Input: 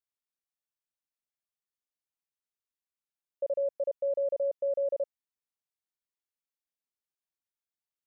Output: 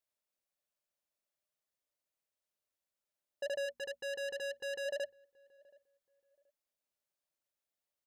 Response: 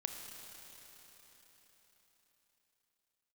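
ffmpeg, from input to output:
-filter_complex "[0:a]equalizer=f=590:t=o:w=0.33:g=12,bandreject=f=60:t=h:w=6,bandreject=f=120:t=h:w=6,bandreject=f=180:t=h:w=6,bandreject=f=240:t=h:w=6,asoftclip=type=tanh:threshold=0.015,asplit=3[s0][s1][s2];[s0]afade=t=out:st=3.65:d=0.02[s3];[s1]asuperstop=centerf=640:order=12:qfactor=3.6,afade=t=in:st=3.65:d=0.02,afade=t=out:st=4.84:d=0.02[s4];[s2]afade=t=in:st=4.84:d=0.02[s5];[s3][s4][s5]amix=inputs=3:normalize=0,asplit=2[s6][s7];[s7]adelay=727,lowpass=f=810:p=1,volume=0.0708,asplit=2[s8][s9];[s9]adelay=727,lowpass=f=810:p=1,volume=0.3[s10];[s8][s10]amix=inputs=2:normalize=0[s11];[s6][s11]amix=inputs=2:normalize=0,volume=1.19"

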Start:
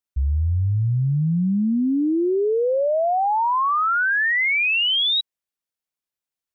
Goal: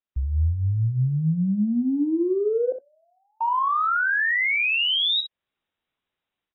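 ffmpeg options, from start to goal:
-filter_complex "[0:a]dynaudnorm=f=150:g=3:m=3.76,alimiter=limit=0.141:level=0:latency=1:release=283,acontrast=25,asettb=1/sr,asplit=3[s0][s1][s2];[s0]atrim=end=2.724[s3];[s1]atrim=start=2.72:end=3.41,asetpts=PTS-STARTPTS,afade=t=in:d=0.004:c=qsin,afade=t=out:st=0.686:d=0.004:c=qsin,asuperpass=centerf=250:order=4:qfactor=4.8[s4];[s2]atrim=start=3.406[s5];[s3][s4]acrossfade=d=0.004:c1=hsin:c2=qsin[s6];[s6][s5]acrossfade=d=0.004:c1=qsin:c2=hsin,aecho=1:1:38|63:0.211|0.299,volume=0.422" -ar 22050 -c:a aac -b:a 16k

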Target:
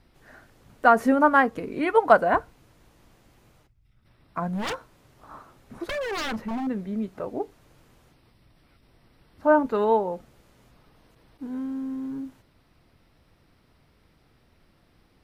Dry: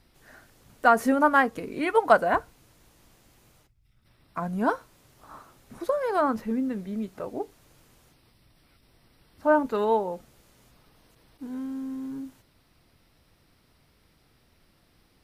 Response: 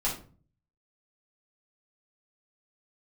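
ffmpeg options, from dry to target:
-filter_complex "[0:a]highshelf=f=3900:g=-9.5,asettb=1/sr,asplit=3[s0][s1][s2];[s0]atrim=end=4.534[s3];[s1]atrim=start=4.53:end=6.67,asetpts=PTS-STARTPTS,afade=t=in:d=0.004:c=qsin,afade=t=out:st=2.136:d=0.004:c=qsin,aeval=exprs='0.0447*(abs(mod(val(0)/0.0447+3,4)-2)-1)':c=same[s4];[s2]atrim=start=6.666[s5];[s3][s4]acrossfade=d=0.004:c1=hsin:c2=qsin[s6];[s6][s5]acrossfade=d=0.004:c1=qsin:c2=hsin,volume=1.33"

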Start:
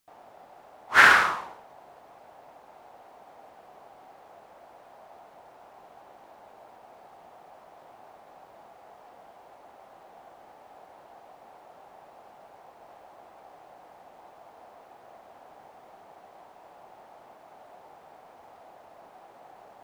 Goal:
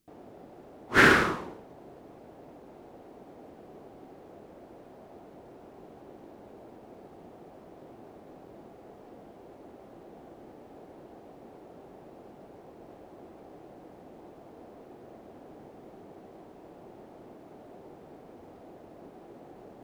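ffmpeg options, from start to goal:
-af "lowshelf=f=530:t=q:w=1.5:g=14,volume=0.708"

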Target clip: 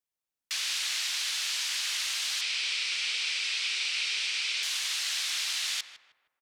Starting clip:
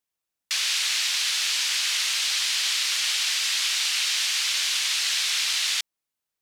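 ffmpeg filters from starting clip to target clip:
-filter_complex "[0:a]asoftclip=type=hard:threshold=0.158,asettb=1/sr,asplit=3[s0][s1][s2];[s0]atrim=end=2.414[s3];[s1]atrim=start=2.41:end=4.63,asetpts=PTS-STARTPTS,afade=t=in:d=0.004:c=qsin,afade=t=out:st=2.216:d=0.004:c=qsin,highpass=f=370:w=0.5412,highpass=f=370:w=1.3066,equalizer=f=430:t=q:w=4:g=10,equalizer=f=700:t=q:w=4:g=-8,equalizer=f=1100:t=q:w=4:g=-5,equalizer=f=1700:t=q:w=4:g=-4,equalizer=f=2400:t=q:w=4:g=7,equalizer=f=6800:t=q:w=4:g=-7,lowpass=f=7900:w=0.5412,lowpass=f=7900:w=1.3066[s4];[s2]atrim=start=4.626[s5];[s3][s4]acrossfade=d=0.004:c1=hsin:c2=qsin[s6];[s6][s5]acrossfade=d=0.004:c1=qsin:c2=hsin,asplit=2[s7][s8];[s8]adelay=156,lowpass=f=1400:p=1,volume=0.355,asplit=2[s9][s10];[s10]adelay=156,lowpass=f=1400:p=1,volume=0.49,asplit=2[s11][s12];[s12]adelay=156,lowpass=f=1400:p=1,volume=0.49,asplit=2[s13][s14];[s14]adelay=156,lowpass=f=1400:p=1,volume=0.49,asplit=2[s15][s16];[s16]adelay=156,lowpass=f=1400:p=1,volume=0.49,asplit=2[s17][s18];[s18]adelay=156,lowpass=f=1400:p=1,volume=0.49[s19];[s7][s9][s11][s13][s15][s17][s19]amix=inputs=7:normalize=0,volume=0.473"

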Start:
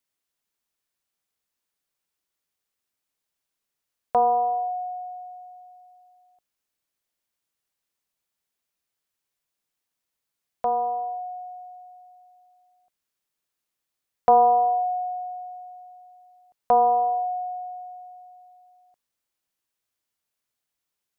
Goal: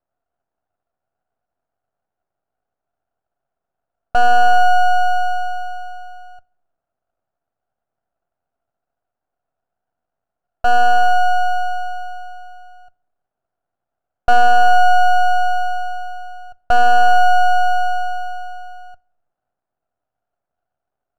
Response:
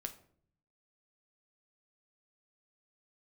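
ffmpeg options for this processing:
-filter_complex "[0:a]asplit=2[s0][s1];[s1]acompressor=threshold=0.02:ratio=6,volume=1.41[s2];[s0][s2]amix=inputs=2:normalize=0,asoftclip=type=tanh:threshold=0.224,aeval=exprs='0.224*(cos(1*acos(clip(val(0)/0.224,-1,1)))-cos(1*PI/2))+0.0794*(cos(2*acos(clip(val(0)/0.224,-1,1)))-cos(2*PI/2))+0.02*(cos(4*acos(clip(val(0)/0.224,-1,1)))-cos(4*PI/2))+0.0398*(cos(5*acos(clip(val(0)/0.224,-1,1)))-cos(5*PI/2))+0.00501*(cos(8*acos(clip(val(0)/0.224,-1,1)))-cos(8*PI/2))':c=same,lowpass=f=710:t=q:w=7.4,aeval=exprs='max(val(0),0)':c=same,asplit=2[s3][s4];[1:a]atrim=start_sample=2205[s5];[s4][s5]afir=irnorm=-1:irlink=0,volume=0.376[s6];[s3][s6]amix=inputs=2:normalize=0,volume=0.473"

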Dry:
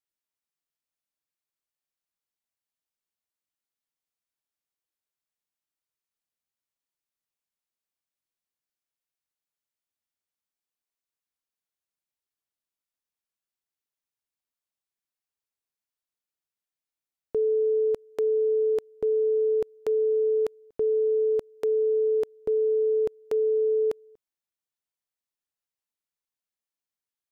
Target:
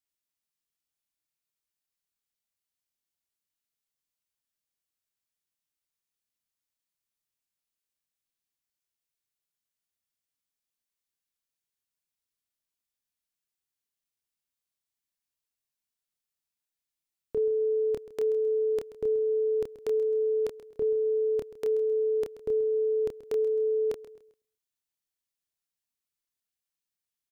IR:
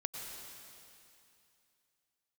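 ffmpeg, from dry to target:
-filter_complex "[0:a]equalizer=f=750:t=o:w=2.9:g=-7,asplit=2[s0][s1];[s1]adelay=28,volume=0.562[s2];[s0][s2]amix=inputs=2:normalize=0,aecho=1:1:132|264|396:0.168|0.0554|0.0183,volume=1.19"

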